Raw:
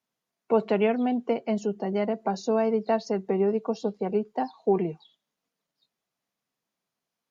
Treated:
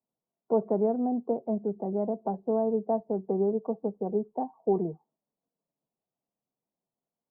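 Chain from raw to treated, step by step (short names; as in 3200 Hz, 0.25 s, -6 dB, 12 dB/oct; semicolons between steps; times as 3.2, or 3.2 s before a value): inverse Chebyshev low-pass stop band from 3000 Hz, stop band 60 dB; gain -2.5 dB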